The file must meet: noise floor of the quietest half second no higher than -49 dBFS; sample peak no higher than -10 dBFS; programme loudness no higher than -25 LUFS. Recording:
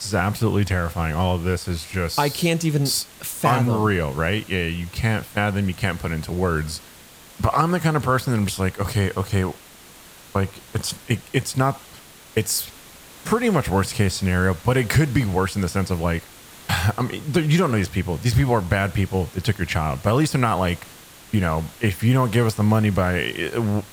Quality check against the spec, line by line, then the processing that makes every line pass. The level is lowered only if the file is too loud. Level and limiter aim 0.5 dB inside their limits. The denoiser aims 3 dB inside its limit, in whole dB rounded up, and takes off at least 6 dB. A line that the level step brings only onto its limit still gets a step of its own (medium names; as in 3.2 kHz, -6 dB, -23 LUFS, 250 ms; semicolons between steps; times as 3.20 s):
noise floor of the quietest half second -45 dBFS: fail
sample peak -4.0 dBFS: fail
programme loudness -22.0 LUFS: fail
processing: noise reduction 6 dB, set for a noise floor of -45 dBFS; trim -3.5 dB; peak limiter -10.5 dBFS